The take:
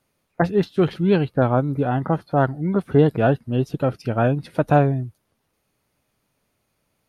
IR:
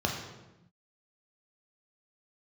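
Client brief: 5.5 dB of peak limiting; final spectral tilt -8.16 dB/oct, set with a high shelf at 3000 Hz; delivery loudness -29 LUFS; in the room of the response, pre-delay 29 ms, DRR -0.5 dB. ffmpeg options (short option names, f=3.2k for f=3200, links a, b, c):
-filter_complex "[0:a]highshelf=f=3k:g=-7.5,alimiter=limit=-10.5dB:level=0:latency=1,asplit=2[a][b];[1:a]atrim=start_sample=2205,adelay=29[c];[b][c]afir=irnorm=-1:irlink=0,volume=-8.5dB[d];[a][d]amix=inputs=2:normalize=0,volume=-13.5dB"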